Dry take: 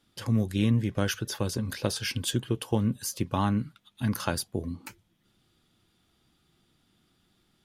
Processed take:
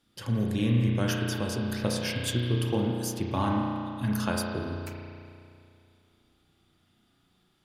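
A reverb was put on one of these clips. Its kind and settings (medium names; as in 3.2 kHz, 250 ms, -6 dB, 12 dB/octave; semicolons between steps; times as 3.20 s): spring tank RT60 2.4 s, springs 33 ms, chirp 25 ms, DRR -1 dB; trim -2.5 dB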